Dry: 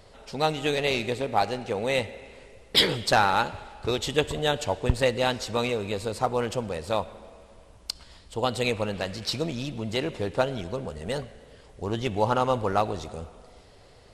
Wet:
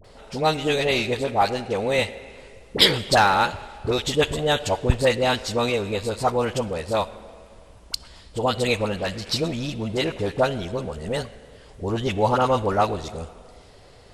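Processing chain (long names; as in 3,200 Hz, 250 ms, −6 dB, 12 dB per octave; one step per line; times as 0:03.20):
all-pass dispersion highs, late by 45 ms, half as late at 890 Hz
level +4 dB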